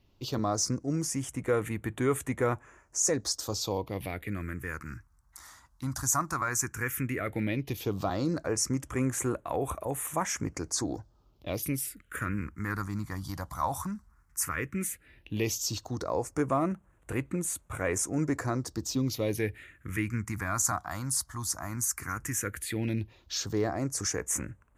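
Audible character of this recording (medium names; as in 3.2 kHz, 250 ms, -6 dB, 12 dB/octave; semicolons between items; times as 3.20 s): phasing stages 4, 0.13 Hz, lowest notch 420–4900 Hz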